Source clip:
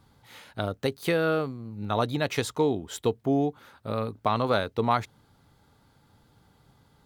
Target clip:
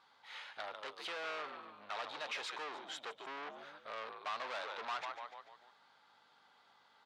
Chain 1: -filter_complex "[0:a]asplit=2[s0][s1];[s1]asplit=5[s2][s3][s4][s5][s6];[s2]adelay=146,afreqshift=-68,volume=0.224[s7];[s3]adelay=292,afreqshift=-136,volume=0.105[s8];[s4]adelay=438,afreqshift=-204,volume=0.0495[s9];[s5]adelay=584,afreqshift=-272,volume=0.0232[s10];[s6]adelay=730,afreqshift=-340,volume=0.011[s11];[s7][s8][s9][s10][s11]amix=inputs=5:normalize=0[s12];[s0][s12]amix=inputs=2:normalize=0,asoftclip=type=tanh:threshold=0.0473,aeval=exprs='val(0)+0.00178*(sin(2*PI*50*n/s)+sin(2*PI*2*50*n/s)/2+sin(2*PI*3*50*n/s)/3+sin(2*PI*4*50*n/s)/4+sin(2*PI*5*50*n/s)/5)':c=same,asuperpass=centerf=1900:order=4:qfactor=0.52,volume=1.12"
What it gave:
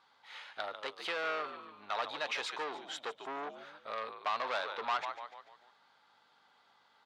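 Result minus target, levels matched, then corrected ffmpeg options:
saturation: distortion -5 dB
-filter_complex "[0:a]asplit=2[s0][s1];[s1]asplit=5[s2][s3][s4][s5][s6];[s2]adelay=146,afreqshift=-68,volume=0.224[s7];[s3]adelay=292,afreqshift=-136,volume=0.105[s8];[s4]adelay=438,afreqshift=-204,volume=0.0495[s9];[s5]adelay=584,afreqshift=-272,volume=0.0232[s10];[s6]adelay=730,afreqshift=-340,volume=0.011[s11];[s7][s8][s9][s10][s11]amix=inputs=5:normalize=0[s12];[s0][s12]amix=inputs=2:normalize=0,asoftclip=type=tanh:threshold=0.0168,aeval=exprs='val(0)+0.00178*(sin(2*PI*50*n/s)+sin(2*PI*2*50*n/s)/2+sin(2*PI*3*50*n/s)/3+sin(2*PI*4*50*n/s)/4+sin(2*PI*5*50*n/s)/5)':c=same,asuperpass=centerf=1900:order=4:qfactor=0.52,volume=1.12"

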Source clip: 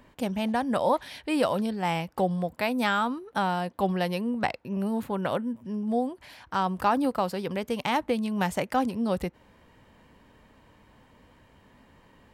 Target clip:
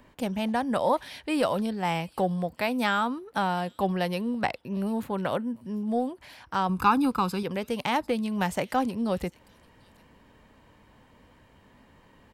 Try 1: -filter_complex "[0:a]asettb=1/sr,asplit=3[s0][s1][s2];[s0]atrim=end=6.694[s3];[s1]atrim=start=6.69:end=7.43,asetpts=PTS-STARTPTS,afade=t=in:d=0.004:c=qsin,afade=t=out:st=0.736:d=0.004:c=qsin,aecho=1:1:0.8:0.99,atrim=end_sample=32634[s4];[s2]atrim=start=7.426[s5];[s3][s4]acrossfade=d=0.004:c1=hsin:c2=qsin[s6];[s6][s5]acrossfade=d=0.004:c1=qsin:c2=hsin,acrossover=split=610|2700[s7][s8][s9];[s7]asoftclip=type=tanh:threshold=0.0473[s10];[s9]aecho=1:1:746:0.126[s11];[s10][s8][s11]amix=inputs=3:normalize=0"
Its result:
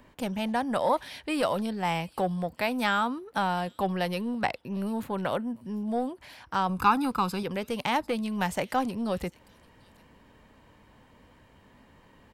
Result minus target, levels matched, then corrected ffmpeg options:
saturation: distortion +12 dB
-filter_complex "[0:a]asettb=1/sr,asplit=3[s0][s1][s2];[s0]atrim=end=6.694[s3];[s1]atrim=start=6.69:end=7.43,asetpts=PTS-STARTPTS,afade=t=in:d=0.004:c=qsin,afade=t=out:st=0.736:d=0.004:c=qsin,aecho=1:1:0.8:0.99,atrim=end_sample=32634[s4];[s2]atrim=start=7.426[s5];[s3][s4]acrossfade=d=0.004:c1=hsin:c2=qsin[s6];[s6][s5]acrossfade=d=0.004:c1=qsin:c2=hsin,acrossover=split=610|2700[s7][s8][s9];[s7]asoftclip=type=tanh:threshold=0.133[s10];[s9]aecho=1:1:746:0.126[s11];[s10][s8][s11]amix=inputs=3:normalize=0"

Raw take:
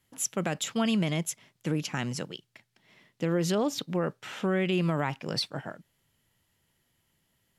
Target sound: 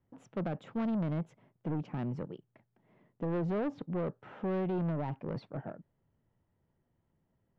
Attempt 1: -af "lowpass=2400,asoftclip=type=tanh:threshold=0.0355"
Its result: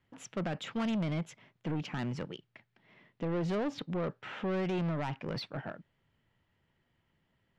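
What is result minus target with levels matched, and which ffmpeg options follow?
2 kHz band +7.0 dB
-af "lowpass=840,asoftclip=type=tanh:threshold=0.0355"

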